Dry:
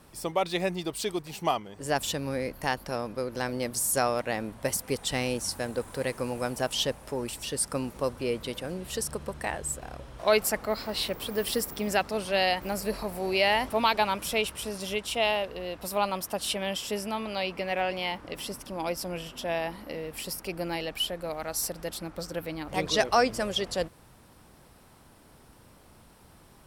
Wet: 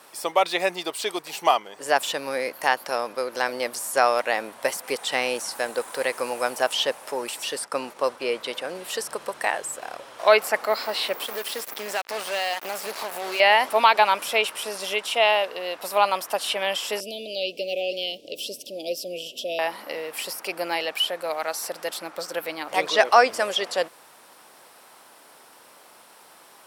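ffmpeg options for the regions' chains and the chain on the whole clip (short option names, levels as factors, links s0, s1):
-filter_complex "[0:a]asettb=1/sr,asplit=3[s0][s1][s2];[s0]atrim=end=7.644[s3];[s1]atrim=start=7.64:end=8.75,asetpts=PTS-STARTPTS,afade=t=in:d=0.004:c=qsin,afade=t=out:st=1.106:d=0.004:c=qsin,agate=range=0.0224:threshold=0.00794:ratio=3:release=100:detection=peak,highshelf=f=9200:g=-11[s4];[s2]atrim=start=8.746[s5];[s3][s4]acrossfade=d=0.004:c1=hsin:c2=qsin[s6];[s6][s5]acrossfade=d=0.004:c1=qsin:c2=hsin,asettb=1/sr,asplit=3[s7][s8][s9];[s7]atrim=end=11.244[s10];[s8]atrim=start=11.24:end=13.4,asetpts=PTS-STARTPTS,afade=t=in:d=0.004:c=qsin,afade=t=out:st=2.156:d=0.004:c=qsin,acompressor=threshold=0.02:ratio=2.5:attack=3.2:release=140:knee=1:detection=peak,acrusher=bits=5:mix=0:aa=0.5[s11];[s9]atrim=start=13.396[s12];[s10][s11]acrossfade=d=0.004:c1=hsin:c2=qsin[s13];[s13][s12]acrossfade=d=0.004:c1=qsin:c2=hsin,asettb=1/sr,asplit=3[s14][s15][s16];[s14]atrim=end=17.004[s17];[s15]atrim=start=17:end=19.59,asetpts=PTS-STARTPTS,afade=t=in:d=0.004:c=qsin,afade=t=out:st=2.586:d=0.004:c=qsin,asuperstop=centerf=1300:order=12:qfactor=0.61,equalizer=f=10000:w=1.2:g=-6.5[s18];[s16]atrim=start=19.586[s19];[s17][s18]acrossfade=d=0.004:c1=hsin:c2=qsin[s20];[s20][s19]acrossfade=d=0.004:c1=qsin:c2=hsin,highpass=580,acrossover=split=3100[s21][s22];[s22]acompressor=threshold=0.0112:ratio=4:attack=1:release=60[s23];[s21][s23]amix=inputs=2:normalize=0,volume=2.82"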